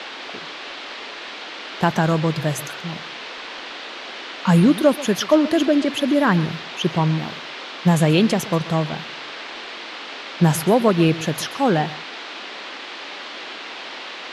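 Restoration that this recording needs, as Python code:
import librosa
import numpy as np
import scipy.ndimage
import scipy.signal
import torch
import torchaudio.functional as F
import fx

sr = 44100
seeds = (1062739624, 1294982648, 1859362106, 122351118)

y = fx.noise_reduce(x, sr, print_start_s=12.49, print_end_s=12.99, reduce_db=30.0)
y = fx.fix_echo_inverse(y, sr, delay_ms=131, level_db=-17.5)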